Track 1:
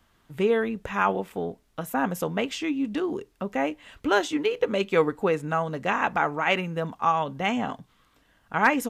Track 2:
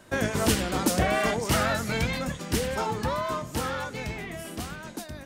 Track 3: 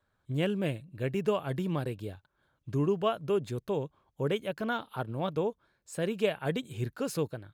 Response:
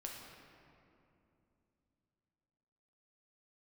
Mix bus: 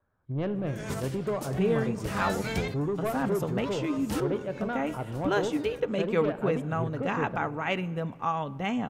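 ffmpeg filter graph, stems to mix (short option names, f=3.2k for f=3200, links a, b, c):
-filter_complex "[0:a]lowshelf=f=260:g=10,adelay=1200,volume=-8dB,asplit=2[a][b];[b]volume=-14.5dB[c];[1:a]adelay=550,volume=-5dB,asplit=2[d][e];[e]volume=-22.5dB[f];[2:a]lowpass=1.4k,asoftclip=type=tanh:threshold=-26dB,volume=-1dB,asplit=3[g][h][i];[h]volume=-3.5dB[j];[i]apad=whole_len=255943[k];[d][k]sidechaincompress=threshold=-50dB:ratio=10:attack=23:release=112[l];[3:a]atrim=start_sample=2205[m];[c][f][j]amix=inputs=3:normalize=0[n];[n][m]afir=irnorm=-1:irlink=0[o];[a][l][g][o]amix=inputs=4:normalize=0"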